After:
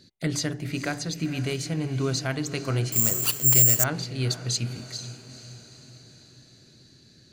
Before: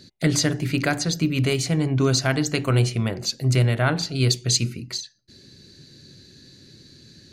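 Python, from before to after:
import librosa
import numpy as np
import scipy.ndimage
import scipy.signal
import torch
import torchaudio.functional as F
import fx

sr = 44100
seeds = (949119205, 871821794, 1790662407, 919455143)

p1 = x + fx.echo_diffused(x, sr, ms=475, feedback_pct=54, wet_db=-13.0, dry=0)
p2 = fx.resample_bad(p1, sr, factor=6, down='none', up='zero_stuff', at=(2.92, 3.84))
y = p2 * 10.0 ** (-7.0 / 20.0)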